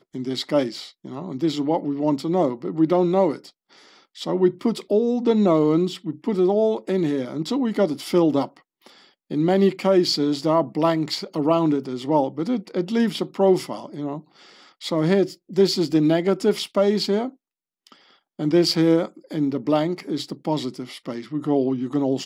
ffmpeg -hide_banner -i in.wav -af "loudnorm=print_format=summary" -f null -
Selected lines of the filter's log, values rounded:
Input Integrated:    -22.2 LUFS
Input True Peak:      -7.2 dBTP
Input LRA:             3.7 LU
Input Threshold:     -32.8 LUFS